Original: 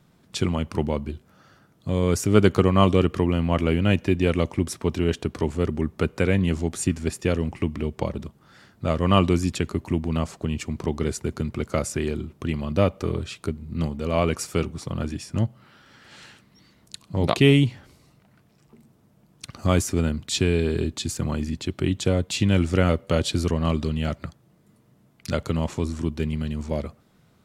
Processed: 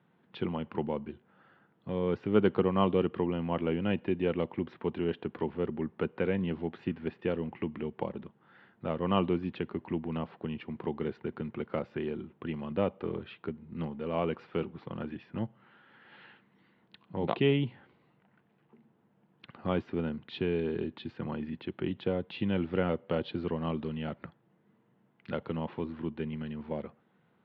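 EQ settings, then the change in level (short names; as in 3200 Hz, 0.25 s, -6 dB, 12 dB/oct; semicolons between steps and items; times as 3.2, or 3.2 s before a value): dynamic EQ 1800 Hz, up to -5 dB, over -39 dBFS, Q 1.2; air absorption 400 m; speaker cabinet 270–3400 Hz, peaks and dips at 280 Hz -7 dB, 400 Hz -4 dB, 620 Hz -9 dB, 1200 Hz -6 dB, 2300 Hz -4 dB; 0.0 dB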